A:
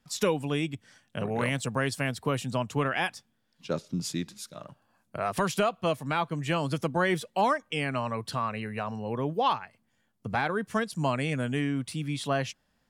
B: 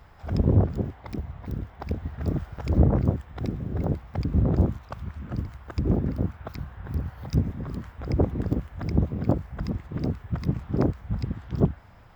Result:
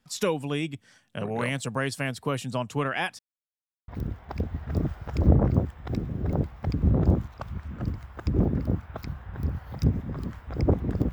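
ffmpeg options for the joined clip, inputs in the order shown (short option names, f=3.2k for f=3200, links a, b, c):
-filter_complex "[0:a]apad=whole_dur=11.12,atrim=end=11.12,asplit=2[a][b];[a]atrim=end=3.19,asetpts=PTS-STARTPTS,afade=t=out:st=3.186:d=0.004:c=hsin[c];[b]atrim=start=3.19:end=3.88,asetpts=PTS-STARTPTS,volume=0[d];[1:a]atrim=start=1.39:end=8.63,asetpts=PTS-STARTPTS,afade=t=in:d=0.004:c=hsin[e];[c][d][e]concat=n=3:v=0:a=1"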